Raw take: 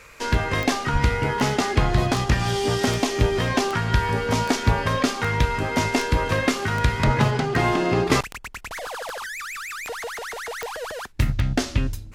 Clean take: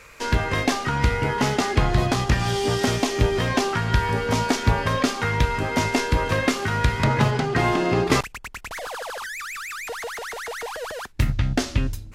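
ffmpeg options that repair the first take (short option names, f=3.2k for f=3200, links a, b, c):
-filter_complex "[0:a]adeclick=t=4,asplit=3[a][b][c];[a]afade=t=out:st=0.92:d=0.02[d];[b]highpass=f=140:w=0.5412,highpass=f=140:w=1.3066,afade=t=in:st=0.92:d=0.02,afade=t=out:st=1.04:d=0.02[e];[c]afade=t=in:st=1.04:d=0.02[f];[d][e][f]amix=inputs=3:normalize=0,asplit=3[g][h][i];[g]afade=t=out:st=7.05:d=0.02[j];[h]highpass=f=140:w=0.5412,highpass=f=140:w=1.3066,afade=t=in:st=7.05:d=0.02,afade=t=out:st=7.17:d=0.02[k];[i]afade=t=in:st=7.17:d=0.02[l];[j][k][l]amix=inputs=3:normalize=0"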